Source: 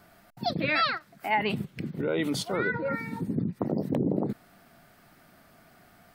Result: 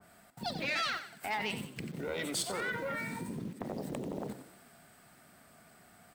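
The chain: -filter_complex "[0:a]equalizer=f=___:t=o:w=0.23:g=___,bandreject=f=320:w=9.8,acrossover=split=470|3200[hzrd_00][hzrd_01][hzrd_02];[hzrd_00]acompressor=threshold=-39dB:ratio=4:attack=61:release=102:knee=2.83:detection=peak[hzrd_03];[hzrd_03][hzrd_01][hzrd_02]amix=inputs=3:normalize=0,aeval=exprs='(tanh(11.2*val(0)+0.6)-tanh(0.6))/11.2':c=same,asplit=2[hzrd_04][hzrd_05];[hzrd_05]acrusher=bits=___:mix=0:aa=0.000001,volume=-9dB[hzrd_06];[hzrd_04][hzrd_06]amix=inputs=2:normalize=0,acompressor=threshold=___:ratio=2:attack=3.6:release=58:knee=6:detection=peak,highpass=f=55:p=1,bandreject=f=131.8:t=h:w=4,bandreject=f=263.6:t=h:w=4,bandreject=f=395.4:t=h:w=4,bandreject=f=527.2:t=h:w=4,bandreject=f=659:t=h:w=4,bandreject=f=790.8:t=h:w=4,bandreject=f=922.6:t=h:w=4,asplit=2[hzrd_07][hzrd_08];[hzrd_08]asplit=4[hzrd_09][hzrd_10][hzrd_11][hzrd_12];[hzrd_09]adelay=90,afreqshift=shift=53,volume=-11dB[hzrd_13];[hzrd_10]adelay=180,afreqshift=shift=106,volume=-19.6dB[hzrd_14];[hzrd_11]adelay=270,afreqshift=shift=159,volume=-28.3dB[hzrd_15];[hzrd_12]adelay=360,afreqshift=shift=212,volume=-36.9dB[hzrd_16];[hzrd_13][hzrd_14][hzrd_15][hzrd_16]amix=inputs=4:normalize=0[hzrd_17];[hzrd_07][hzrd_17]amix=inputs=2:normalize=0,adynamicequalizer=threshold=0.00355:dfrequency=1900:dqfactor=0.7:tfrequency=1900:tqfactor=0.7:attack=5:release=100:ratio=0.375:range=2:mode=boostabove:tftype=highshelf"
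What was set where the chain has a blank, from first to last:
8.1k, 13.5, 7, -39dB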